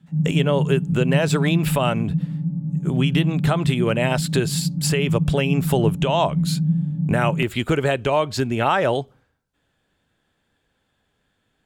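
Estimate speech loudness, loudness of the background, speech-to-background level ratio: -22.5 LUFS, -24.0 LUFS, 1.5 dB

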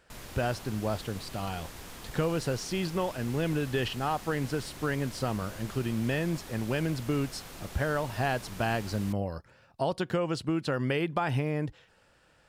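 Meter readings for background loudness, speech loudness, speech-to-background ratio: -44.5 LUFS, -32.0 LUFS, 12.5 dB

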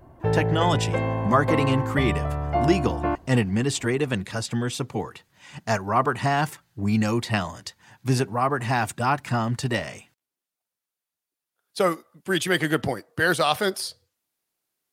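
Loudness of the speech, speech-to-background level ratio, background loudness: -25.0 LUFS, 1.0 dB, -26.0 LUFS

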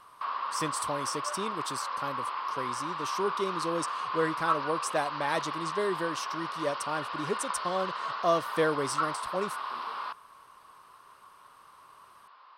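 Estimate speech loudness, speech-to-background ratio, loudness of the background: -33.5 LUFS, 1.0 dB, -34.5 LUFS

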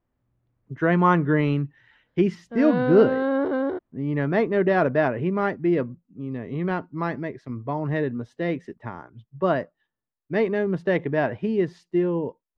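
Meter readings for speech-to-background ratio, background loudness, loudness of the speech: 1.5 dB, -25.5 LUFS, -24.0 LUFS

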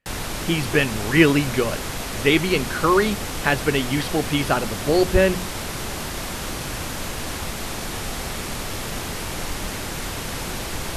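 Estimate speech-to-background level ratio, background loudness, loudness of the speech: 7.5 dB, -28.5 LUFS, -21.0 LUFS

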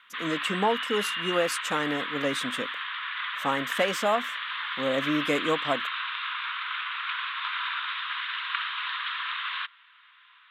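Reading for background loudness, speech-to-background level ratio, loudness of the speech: -31.0 LUFS, 2.0 dB, -29.0 LUFS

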